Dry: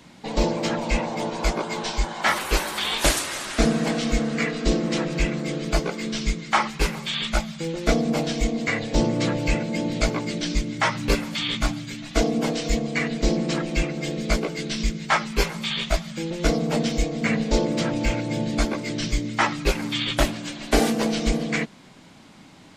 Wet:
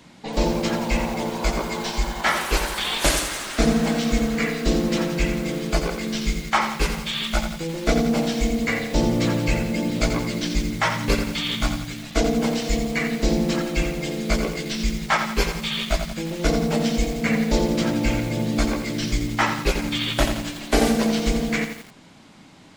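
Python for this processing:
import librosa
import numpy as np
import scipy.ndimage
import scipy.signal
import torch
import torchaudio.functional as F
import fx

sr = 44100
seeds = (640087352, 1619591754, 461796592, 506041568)

y = fx.echo_crushed(x, sr, ms=86, feedback_pct=55, bits=6, wet_db=-7.0)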